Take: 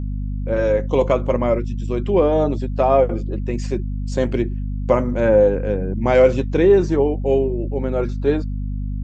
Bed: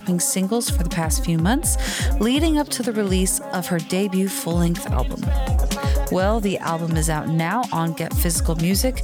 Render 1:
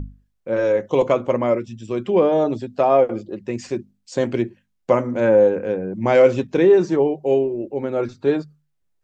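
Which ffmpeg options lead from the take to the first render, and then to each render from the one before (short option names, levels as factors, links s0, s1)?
-af "bandreject=f=50:t=h:w=6,bandreject=f=100:t=h:w=6,bandreject=f=150:t=h:w=6,bandreject=f=200:t=h:w=6,bandreject=f=250:t=h:w=6"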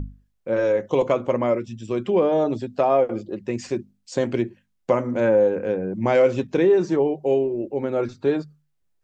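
-af "acompressor=threshold=0.1:ratio=1.5"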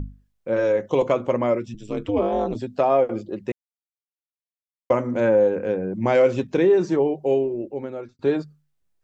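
-filter_complex "[0:a]asettb=1/sr,asplit=3[s0][s1][s2];[s0]atrim=end=1.744[s3];[s1]atrim=start=1.74:end=2.55,asetpts=PTS-STARTPTS,afade=t=in:d=0.004:c=qsin,afade=t=out:st=0.806:d=0.004:c=qsin,aeval=exprs='val(0)*sin(2*PI*100*n/s)':c=same[s4];[s2]atrim=start=2.546[s5];[s3][s4]acrossfade=d=0.004:c1=hsin:c2=qsin[s6];[s6][s5]acrossfade=d=0.004:c1=qsin:c2=hsin,asplit=4[s7][s8][s9][s10];[s7]atrim=end=3.52,asetpts=PTS-STARTPTS,afade=t=out:st=3.516:d=0.004:c=hsin[s11];[s8]atrim=start=3.52:end=4.9,asetpts=PTS-STARTPTS,volume=0[s12];[s9]atrim=start=4.9:end=8.19,asetpts=PTS-STARTPTS,afade=t=in:d=0.004:c=hsin,afade=t=out:st=2.29:d=1:c=qsin[s13];[s10]atrim=start=8.19,asetpts=PTS-STARTPTS,afade=t=in:d=0.004:c=hsin[s14];[s11][s12][s13][s14]concat=n=4:v=0:a=1"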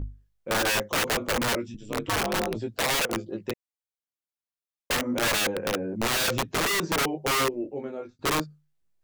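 -af "flanger=delay=17.5:depth=2.8:speed=0.32,aeval=exprs='(mod(10*val(0)+1,2)-1)/10':c=same"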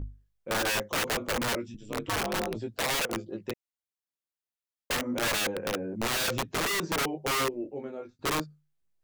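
-af "volume=0.668"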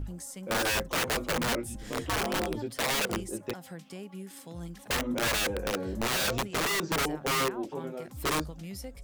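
-filter_complex "[1:a]volume=0.0841[s0];[0:a][s0]amix=inputs=2:normalize=0"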